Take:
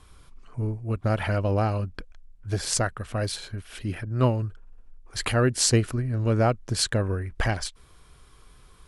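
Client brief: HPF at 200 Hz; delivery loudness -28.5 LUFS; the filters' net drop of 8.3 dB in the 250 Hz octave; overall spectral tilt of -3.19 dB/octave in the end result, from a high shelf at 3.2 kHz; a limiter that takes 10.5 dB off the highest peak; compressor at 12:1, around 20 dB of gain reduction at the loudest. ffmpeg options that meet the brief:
-af "highpass=200,equalizer=f=250:t=o:g=-9,highshelf=f=3200:g=8,acompressor=threshold=0.02:ratio=12,volume=4.22,alimiter=limit=0.168:level=0:latency=1"

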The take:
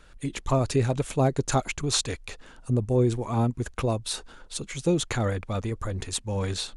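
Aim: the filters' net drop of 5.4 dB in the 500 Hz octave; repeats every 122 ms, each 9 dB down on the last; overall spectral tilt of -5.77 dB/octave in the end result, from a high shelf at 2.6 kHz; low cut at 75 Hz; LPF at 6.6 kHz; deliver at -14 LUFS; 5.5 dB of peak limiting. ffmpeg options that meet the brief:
-af "highpass=75,lowpass=6600,equalizer=f=500:t=o:g=-7,highshelf=f=2600:g=-6,alimiter=limit=0.1:level=0:latency=1,aecho=1:1:122|244|366|488:0.355|0.124|0.0435|0.0152,volume=7.08"

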